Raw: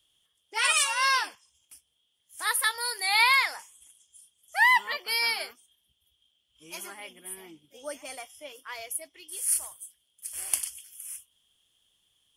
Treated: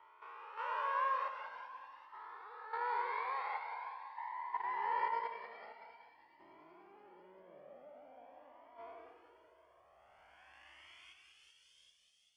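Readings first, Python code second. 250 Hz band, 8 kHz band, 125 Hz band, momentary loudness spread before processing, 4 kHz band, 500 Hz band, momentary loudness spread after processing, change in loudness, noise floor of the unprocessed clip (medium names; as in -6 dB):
-11.5 dB, under -40 dB, no reading, 21 LU, -29.5 dB, -6.0 dB, 22 LU, -15.0 dB, -74 dBFS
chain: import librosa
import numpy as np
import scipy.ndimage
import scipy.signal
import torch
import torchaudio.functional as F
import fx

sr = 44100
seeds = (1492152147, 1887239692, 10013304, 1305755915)

p1 = fx.spec_blur(x, sr, span_ms=660.0)
p2 = fx.low_shelf(p1, sr, hz=180.0, db=-10.0)
p3 = fx.level_steps(p2, sr, step_db=12)
p4 = p3 + fx.echo_wet_highpass(p3, sr, ms=389, feedback_pct=55, hz=2900.0, wet_db=-9, dry=0)
p5 = fx.filter_sweep_lowpass(p4, sr, from_hz=940.0, to_hz=5000.0, start_s=9.94, end_s=11.69, q=1.4)
p6 = fx.air_absorb(p5, sr, metres=90.0)
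p7 = fx.echo_feedback(p6, sr, ms=188, feedback_pct=49, wet_db=-7)
p8 = fx.comb_cascade(p7, sr, direction='rising', hz=0.46)
y = p8 * librosa.db_to_amplitude(7.5)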